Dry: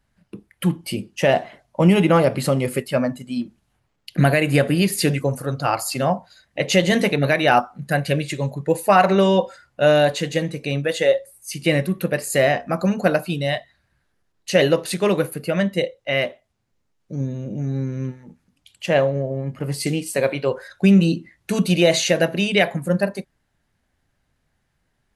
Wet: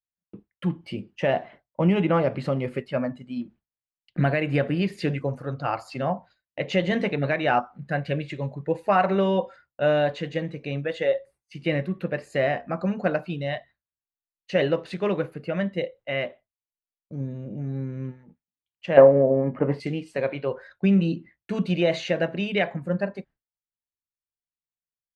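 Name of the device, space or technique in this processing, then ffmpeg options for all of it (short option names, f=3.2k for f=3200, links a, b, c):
hearing-loss simulation: -filter_complex "[0:a]asettb=1/sr,asplit=3[a][b][c];[a]atrim=end=18.974[d];[b]atrim=start=18.97:end=19.8,asetpts=PTS-STARTPTS,afade=t=in:d=0.004:c=qsin,afade=t=out:st=0.826:d=0.004:c=qsin,equalizer=f=250:t=o:w=1:g=10,equalizer=f=500:t=o:w=1:g=10,equalizer=f=1k:t=o:w=1:g=10,equalizer=f=2k:t=o:w=1:g=6,equalizer=f=4k:t=o:w=1:g=-4,equalizer=f=8k:t=o:w=1:g=-12[e];[c]atrim=start=19.796[f];[d][e]acrossfade=d=0.004:c1=hsin:c2=qsin[g];[g][f]acrossfade=d=0.004:c1=qsin:c2=hsin,lowpass=2.8k,agate=range=-33dB:threshold=-37dB:ratio=3:detection=peak,volume=-6dB"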